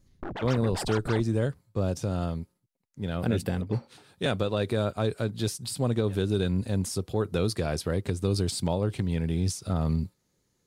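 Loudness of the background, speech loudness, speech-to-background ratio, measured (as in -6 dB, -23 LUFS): -37.5 LUFS, -29.0 LUFS, 8.5 dB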